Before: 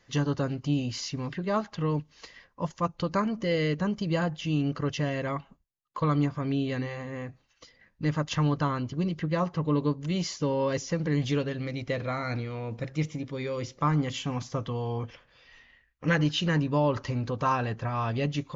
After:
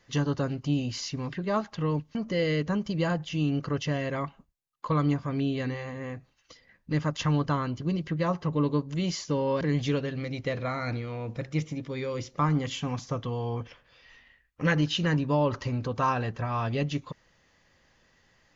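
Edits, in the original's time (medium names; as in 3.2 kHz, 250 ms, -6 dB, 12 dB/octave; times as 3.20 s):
2.15–3.27 s: delete
10.73–11.04 s: delete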